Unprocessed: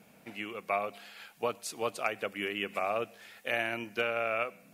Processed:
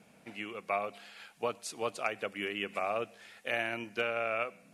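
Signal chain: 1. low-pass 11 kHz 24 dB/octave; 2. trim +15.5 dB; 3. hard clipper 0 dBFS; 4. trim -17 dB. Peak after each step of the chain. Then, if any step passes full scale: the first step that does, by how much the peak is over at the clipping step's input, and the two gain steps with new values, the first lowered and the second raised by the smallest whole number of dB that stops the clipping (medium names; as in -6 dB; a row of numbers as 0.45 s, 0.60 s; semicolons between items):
-17.0 dBFS, -1.5 dBFS, -1.5 dBFS, -18.5 dBFS; nothing clips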